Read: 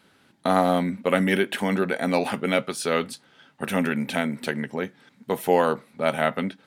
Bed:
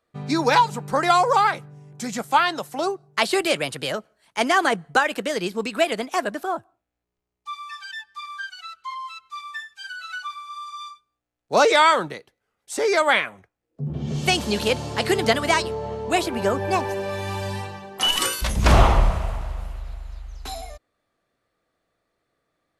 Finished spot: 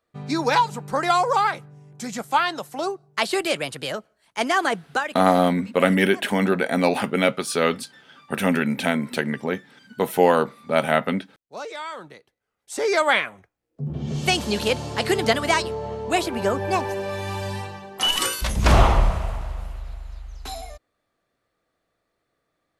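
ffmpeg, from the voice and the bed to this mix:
-filter_complex "[0:a]adelay=4700,volume=3dB[a];[1:a]volume=15.5dB,afade=t=out:st=4.72:d=0.71:silence=0.158489,afade=t=in:st=11.9:d=1.07:silence=0.133352[b];[a][b]amix=inputs=2:normalize=0"

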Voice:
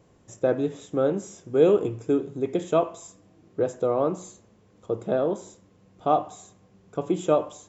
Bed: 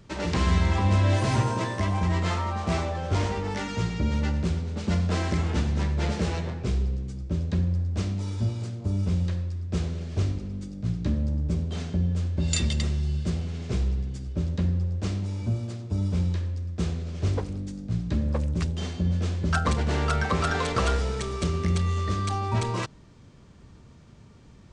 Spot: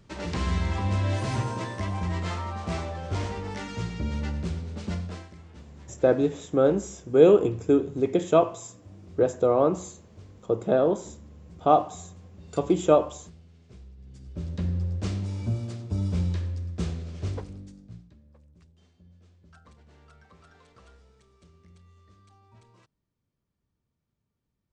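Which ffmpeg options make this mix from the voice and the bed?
-filter_complex "[0:a]adelay=5600,volume=2.5dB[a];[1:a]volume=16.5dB,afade=t=out:st=4.83:d=0.46:silence=0.133352,afade=t=in:st=13.97:d=0.92:silence=0.0891251,afade=t=out:st=16.65:d=1.49:silence=0.0334965[b];[a][b]amix=inputs=2:normalize=0"

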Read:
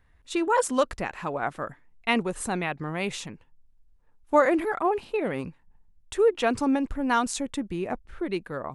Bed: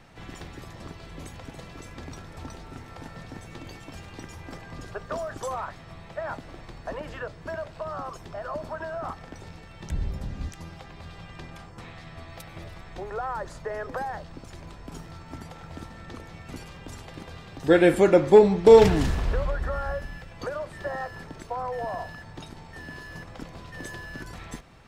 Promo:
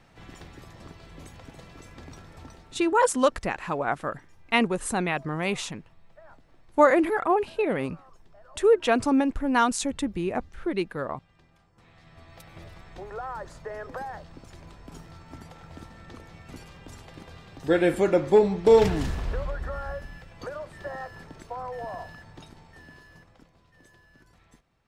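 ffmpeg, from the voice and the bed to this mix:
-filter_complex "[0:a]adelay=2450,volume=2dB[a];[1:a]volume=10.5dB,afade=t=out:st=2.31:d=0.72:silence=0.188365,afade=t=in:st=11.71:d=0.92:silence=0.177828,afade=t=out:st=22.14:d=1.39:silence=0.177828[b];[a][b]amix=inputs=2:normalize=0"

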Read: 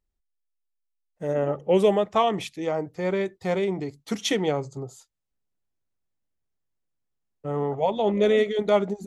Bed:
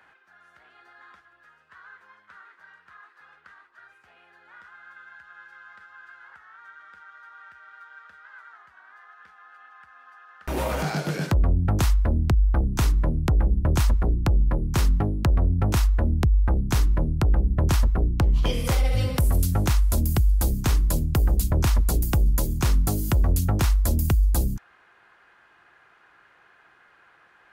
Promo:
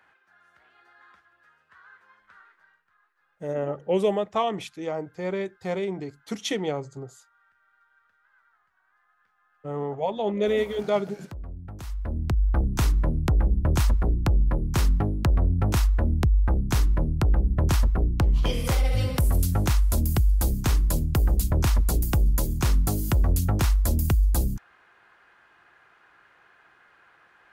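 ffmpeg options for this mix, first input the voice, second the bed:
-filter_complex "[0:a]adelay=2200,volume=-3.5dB[a];[1:a]volume=12dB,afade=t=out:st=2.4:d=0.45:silence=0.223872,afade=t=in:st=11.83:d=0.76:silence=0.149624[b];[a][b]amix=inputs=2:normalize=0"

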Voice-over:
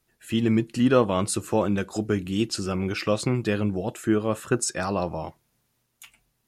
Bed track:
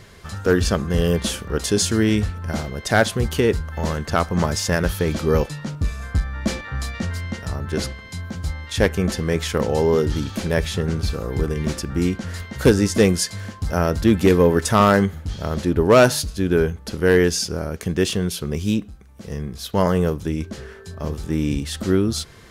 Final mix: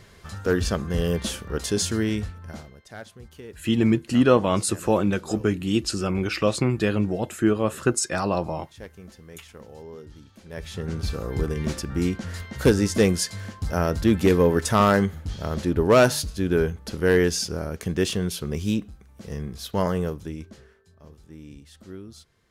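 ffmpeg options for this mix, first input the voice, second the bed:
-filter_complex "[0:a]adelay=3350,volume=2dB[a];[1:a]volume=15dB,afade=t=out:st=1.89:d=0.95:silence=0.11885,afade=t=in:st=10.45:d=0.72:silence=0.1,afade=t=out:st=19.56:d=1.27:silence=0.125893[b];[a][b]amix=inputs=2:normalize=0"

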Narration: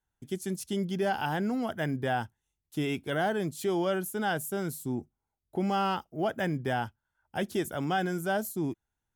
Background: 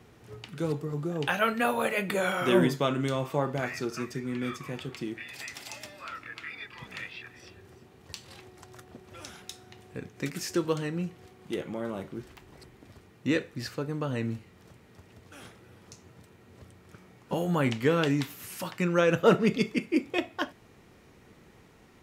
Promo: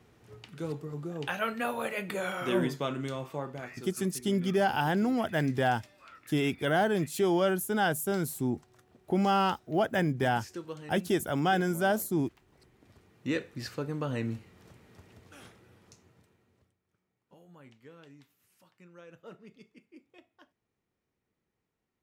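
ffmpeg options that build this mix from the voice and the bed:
-filter_complex "[0:a]adelay=3550,volume=2.5dB[a];[1:a]volume=5.5dB,afade=t=out:st=2.94:d=0.96:silence=0.446684,afade=t=in:st=12.5:d=1.34:silence=0.281838,afade=t=out:st=15.02:d=1.75:silence=0.0473151[b];[a][b]amix=inputs=2:normalize=0"

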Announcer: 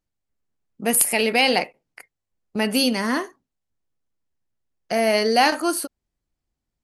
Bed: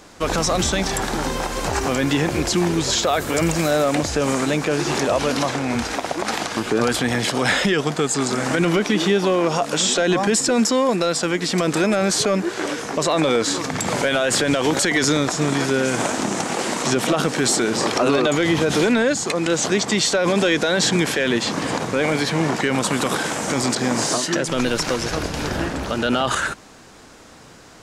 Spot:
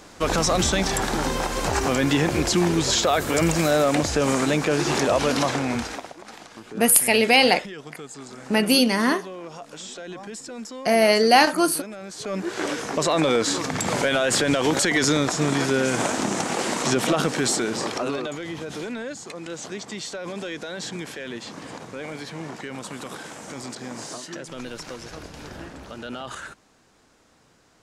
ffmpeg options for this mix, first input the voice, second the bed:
-filter_complex "[0:a]adelay=5950,volume=2dB[a];[1:a]volume=15.5dB,afade=t=out:st=5.59:d=0.55:silence=0.133352,afade=t=in:st=12.17:d=0.45:silence=0.149624,afade=t=out:st=17.17:d=1.23:silence=0.237137[b];[a][b]amix=inputs=2:normalize=0"

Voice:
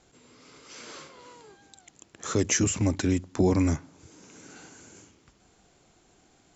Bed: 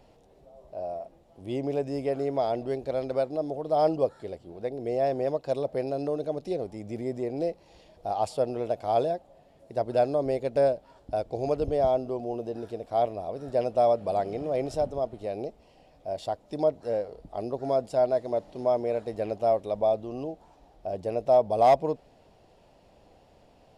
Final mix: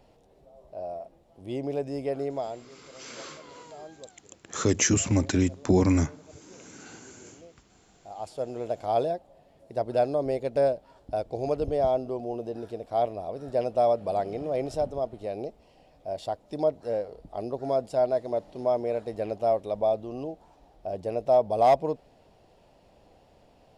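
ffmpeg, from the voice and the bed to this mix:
-filter_complex "[0:a]adelay=2300,volume=1.5dB[a];[1:a]volume=20dB,afade=t=out:st=2.23:d=0.46:silence=0.0944061,afade=t=in:st=7.96:d=0.88:silence=0.0841395[b];[a][b]amix=inputs=2:normalize=0"

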